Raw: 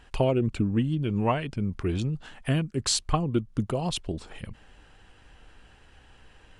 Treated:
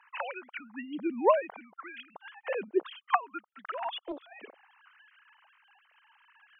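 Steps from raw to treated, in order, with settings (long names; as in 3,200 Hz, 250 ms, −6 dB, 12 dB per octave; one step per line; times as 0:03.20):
three sine waves on the formant tracks
auto-filter high-pass sine 0.64 Hz 450–1,500 Hz
0:03.54–0:04.21: highs frequency-modulated by the lows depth 0.21 ms
level −2 dB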